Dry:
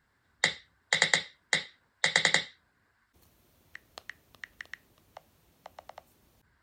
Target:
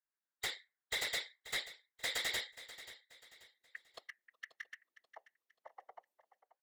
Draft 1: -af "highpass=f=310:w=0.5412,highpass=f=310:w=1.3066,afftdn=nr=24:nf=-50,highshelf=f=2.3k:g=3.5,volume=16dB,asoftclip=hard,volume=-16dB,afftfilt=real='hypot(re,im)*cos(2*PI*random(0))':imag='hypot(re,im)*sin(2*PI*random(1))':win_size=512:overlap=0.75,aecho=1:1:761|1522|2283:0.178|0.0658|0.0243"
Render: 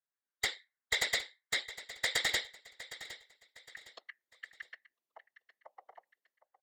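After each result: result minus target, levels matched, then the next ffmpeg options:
echo 0.227 s late; overloaded stage: distortion -7 dB
-af "highpass=f=310:w=0.5412,highpass=f=310:w=1.3066,afftdn=nr=24:nf=-50,highshelf=f=2.3k:g=3.5,volume=16dB,asoftclip=hard,volume=-16dB,afftfilt=real='hypot(re,im)*cos(2*PI*random(0))':imag='hypot(re,im)*sin(2*PI*random(1))':win_size=512:overlap=0.75,aecho=1:1:534|1068|1602:0.178|0.0658|0.0243"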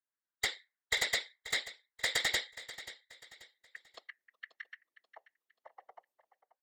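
overloaded stage: distortion -7 dB
-af "highpass=f=310:w=0.5412,highpass=f=310:w=1.3066,afftdn=nr=24:nf=-50,highshelf=f=2.3k:g=3.5,volume=27.5dB,asoftclip=hard,volume=-27.5dB,afftfilt=real='hypot(re,im)*cos(2*PI*random(0))':imag='hypot(re,im)*sin(2*PI*random(1))':win_size=512:overlap=0.75,aecho=1:1:534|1068|1602:0.178|0.0658|0.0243"

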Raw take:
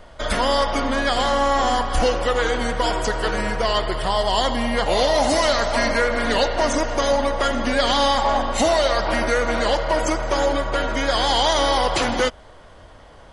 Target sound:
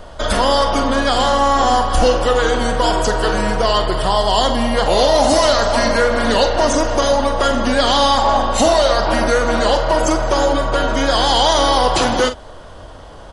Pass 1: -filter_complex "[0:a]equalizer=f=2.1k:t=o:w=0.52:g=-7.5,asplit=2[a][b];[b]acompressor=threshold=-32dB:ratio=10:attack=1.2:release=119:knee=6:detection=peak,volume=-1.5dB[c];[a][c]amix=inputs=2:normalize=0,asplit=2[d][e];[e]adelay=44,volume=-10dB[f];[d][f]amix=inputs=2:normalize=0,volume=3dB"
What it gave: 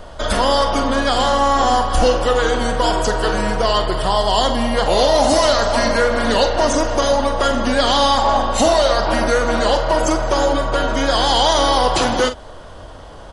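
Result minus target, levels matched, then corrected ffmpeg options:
compressor: peak gain reduction +7 dB
-filter_complex "[0:a]equalizer=f=2.1k:t=o:w=0.52:g=-7.5,asplit=2[a][b];[b]acompressor=threshold=-24.5dB:ratio=10:attack=1.2:release=119:knee=6:detection=peak,volume=-1.5dB[c];[a][c]amix=inputs=2:normalize=0,asplit=2[d][e];[e]adelay=44,volume=-10dB[f];[d][f]amix=inputs=2:normalize=0,volume=3dB"

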